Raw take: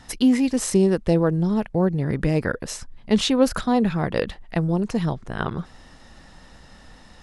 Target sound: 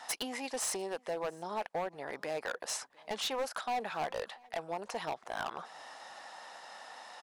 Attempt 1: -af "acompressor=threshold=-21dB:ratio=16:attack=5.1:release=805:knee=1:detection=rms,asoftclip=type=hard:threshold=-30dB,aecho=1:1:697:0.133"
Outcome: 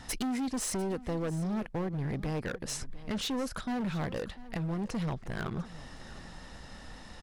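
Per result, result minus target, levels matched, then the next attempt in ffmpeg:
1000 Hz band -7.5 dB; echo-to-direct +9.5 dB
-af "acompressor=threshold=-21dB:ratio=16:attack=5.1:release=805:knee=1:detection=rms,highpass=f=750:t=q:w=2.2,asoftclip=type=hard:threshold=-30dB,aecho=1:1:697:0.133"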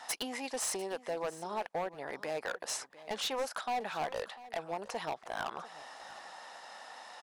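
echo-to-direct +9.5 dB
-af "acompressor=threshold=-21dB:ratio=16:attack=5.1:release=805:knee=1:detection=rms,highpass=f=750:t=q:w=2.2,asoftclip=type=hard:threshold=-30dB,aecho=1:1:697:0.0447"

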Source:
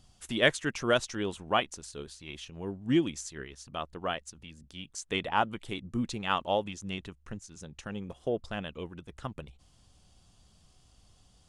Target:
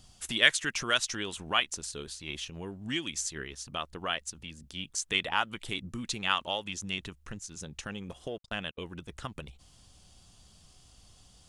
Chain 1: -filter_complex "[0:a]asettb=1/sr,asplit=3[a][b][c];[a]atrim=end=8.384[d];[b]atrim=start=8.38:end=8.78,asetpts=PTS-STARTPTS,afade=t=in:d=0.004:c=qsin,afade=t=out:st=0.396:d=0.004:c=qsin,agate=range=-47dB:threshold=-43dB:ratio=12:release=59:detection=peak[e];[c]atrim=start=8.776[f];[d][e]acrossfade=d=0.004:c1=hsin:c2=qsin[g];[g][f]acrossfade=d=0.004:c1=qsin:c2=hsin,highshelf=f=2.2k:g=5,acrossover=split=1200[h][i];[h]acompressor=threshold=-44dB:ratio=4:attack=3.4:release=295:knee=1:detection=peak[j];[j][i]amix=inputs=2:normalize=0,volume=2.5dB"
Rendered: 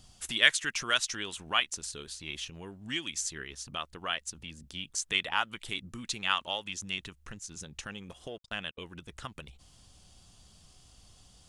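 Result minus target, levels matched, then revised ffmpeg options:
compressor: peak gain reduction +5 dB
-filter_complex "[0:a]asettb=1/sr,asplit=3[a][b][c];[a]atrim=end=8.384[d];[b]atrim=start=8.38:end=8.78,asetpts=PTS-STARTPTS,afade=t=in:d=0.004:c=qsin,afade=t=out:st=0.396:d=0.004:c=qsin,agate=range=-47dB:threshold=-43dB:ratio=12:release=59:detection=peak[e];[c]atrim=start=8.776[f];[d][e]acrossfade=d=0.004:c1=hsin:c2=qsin[g];[g][f]acrossfade=d=0.004:c1=qsin:c2=hsin,highshelf=f=2.2k:g=5,acrossover=split=1200[h][i];[h]acompressor=threshold=-37.5dB:ratio=4:attack=3.4:release=295:knee=1:detection=peak[j];[j][i]amix=inputs=2:normalize=0,volume=2.5dB"

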